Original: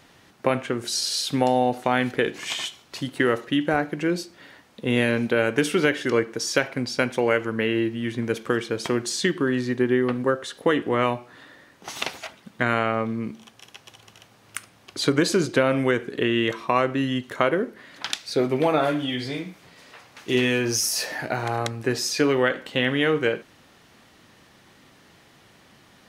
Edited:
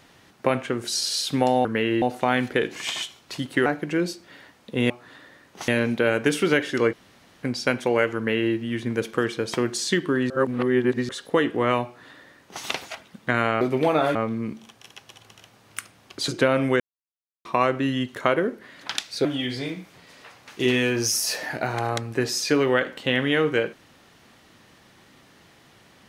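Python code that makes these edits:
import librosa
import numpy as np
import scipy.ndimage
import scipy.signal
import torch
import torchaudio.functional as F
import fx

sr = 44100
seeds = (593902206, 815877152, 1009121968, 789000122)

y = fx.edit(x, sr, fx.cut(start_s=3.29, length_s=0.47),
    fx.room_tone_fill(start_s=6.25, length_s=0.5),
    fx.duplicate(start_s=7.49, length_s=0.37, to_s=1.65),
    fx.reverse_span(start_s=9.62, length_s=0.79),
    fx.duplicate(start_s=11.17, length_s=0.78, to_s=5.0),
    fx.cut(start_s=15.06, length_s=0.37),
    fx.silence(start_s=15.95, length_s=0.65),
    fx.move(start_s=18.4, length_s=0.54, to_s=12.93), tone=tone)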